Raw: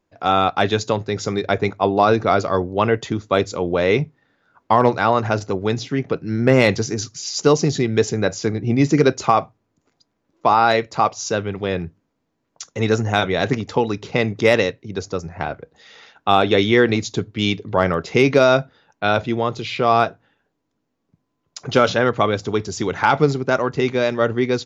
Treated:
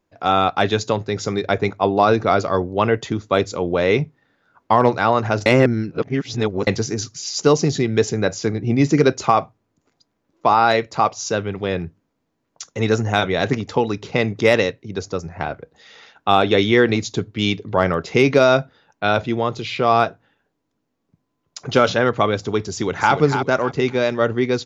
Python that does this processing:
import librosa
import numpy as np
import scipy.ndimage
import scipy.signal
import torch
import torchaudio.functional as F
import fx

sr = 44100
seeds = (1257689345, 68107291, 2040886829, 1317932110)

y = fx.echo_throw(x, sr, start_s=22.7, length_s=0.43, ms=290, feedback_pct=25, wet_db=-7.5)
y = fx.edit(y, sr, fx.reverse_span(start_s=5.46, length_s=1.21), tone=tone)